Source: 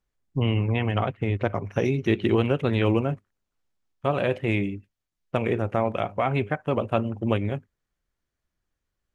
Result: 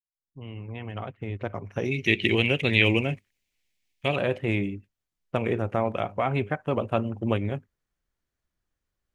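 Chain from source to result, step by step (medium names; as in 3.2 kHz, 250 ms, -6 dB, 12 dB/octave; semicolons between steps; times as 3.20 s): fade-in on the opening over 2.68 s; 1.91–4.16 s: resonant high shelf 1.7 kHz +9 dB, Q 3; trim -1.5 dB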